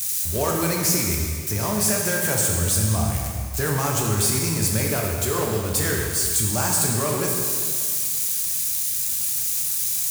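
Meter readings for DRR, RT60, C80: -1.5 dB, 2.0 s, 2.5 dB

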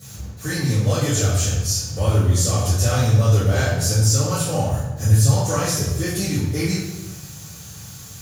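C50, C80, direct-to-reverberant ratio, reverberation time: 0.0 dB, 3.5 dB, -10.5 dB, 1.1 s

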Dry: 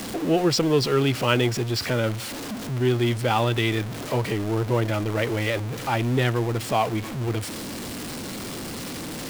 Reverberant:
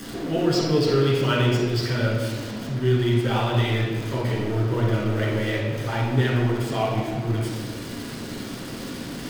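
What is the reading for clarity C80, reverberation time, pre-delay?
3.0 dB, 1.5 s, 8 ms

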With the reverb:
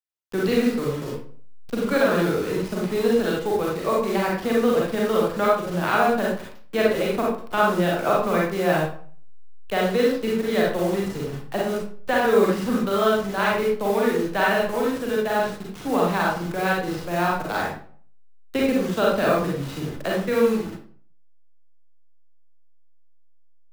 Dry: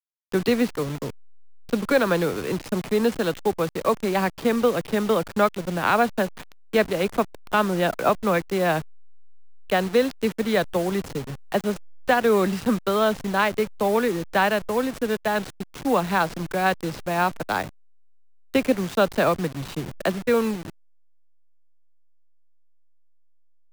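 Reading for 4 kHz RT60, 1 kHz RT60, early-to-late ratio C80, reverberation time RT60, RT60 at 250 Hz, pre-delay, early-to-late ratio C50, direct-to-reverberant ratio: 0.35 s, 0.45 s, 6.0 dB, 0.50 s, 0.50 s, 35 ms, 0.0 dB, -4.0 dB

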